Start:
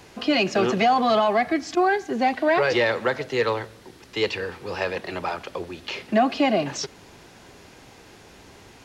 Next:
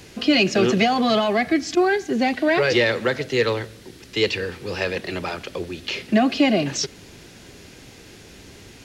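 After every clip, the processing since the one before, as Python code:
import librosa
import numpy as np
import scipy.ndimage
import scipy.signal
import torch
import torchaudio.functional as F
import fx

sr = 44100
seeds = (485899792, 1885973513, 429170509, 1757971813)

y = fx.peak_eq(x, sr, hz=920.0, db=-10.5, octaves=1.4)
y = F.gain(torch.from_numpy(y), 6.0).numpy()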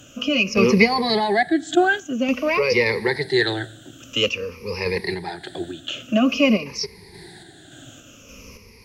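y = fx.spec_ripple(x, sr, per_octave=0.86, drift_hz=-0.5, depth_db=20)
y = fx.tremolo_random(y, sr, seeds[0], hz=3.5, depth_pct=55)
y = F.gain(torch.from_numpy(y), -1.5).numpy()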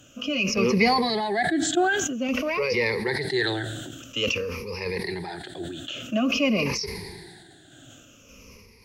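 y = fx.sustainer(x, sr, db_per_s=32.0)
y = F.gain(torch.from_numpy(y), -6.5).numpy()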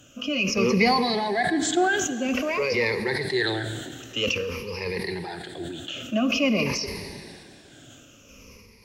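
y = fx.rev_plate(x, sr, seeds[1], rt60_s=2.8, hf_ratio=0.95, predelay_ms=0, drr_db=12.5)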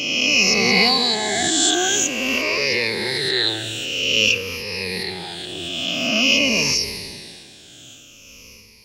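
y = fx.spec_swells(x, sr, rise_s=1.8)
y = fx.high_shelf_res(y, sr, hz=2200.0, db=8.0, q=1.5)
y = F.gain(torch.from_numpy(y), -3.0).numpy()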